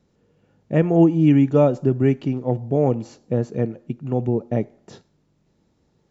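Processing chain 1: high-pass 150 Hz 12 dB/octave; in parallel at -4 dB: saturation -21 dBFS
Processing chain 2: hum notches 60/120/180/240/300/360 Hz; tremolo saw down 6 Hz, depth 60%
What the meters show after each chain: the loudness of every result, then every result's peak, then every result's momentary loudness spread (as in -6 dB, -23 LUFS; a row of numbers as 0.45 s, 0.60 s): -19.0 LUFS, -23.5 LUFS; -4.0 dBFS, -5.0 dBFS; 11 LU, 12 LU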